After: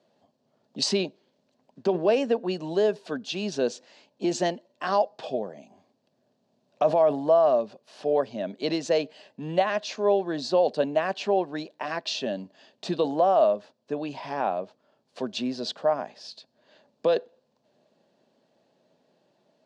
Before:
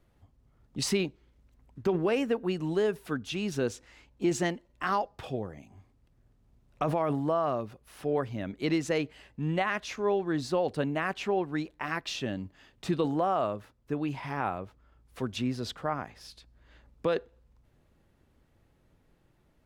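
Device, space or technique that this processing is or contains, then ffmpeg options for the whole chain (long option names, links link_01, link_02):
television speaker: -af "highpass=frequency=200:width=0.5412,highpass=frequency=200:width=1.3066,equalizer=frequency=310:width_type=q:width=4:gain=-6,equalizer=frequency=620:width_type=q:width=4:gain=9,equalizer=frequency=1300:width_type=q:width=4:gain=-9,equalizer=frequency=2100:width_type=q:width=4:gain=-9,equalizer=frequency=4400:width_type=q:width=4:gain=6,lowpass=frequency=7000:width=0.5412,lowpass=frequency=7000:width=1.3066,volume=4dB"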